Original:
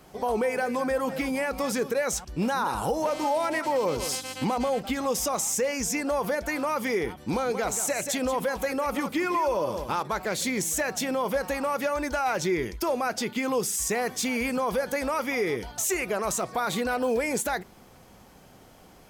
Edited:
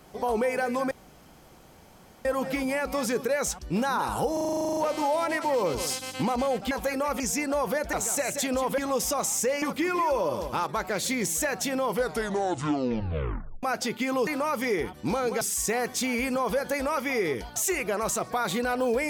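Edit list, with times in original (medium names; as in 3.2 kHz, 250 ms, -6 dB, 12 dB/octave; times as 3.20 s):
0.91 s: insert room tone 1.34 s
2.99 s: stutter 0.04 s, 12 plays
4.93–5.77 s: swap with 8.49–8.98 s
6.50–7.64 s: move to 13.63 s
11.21 s: tape stop 1.78 s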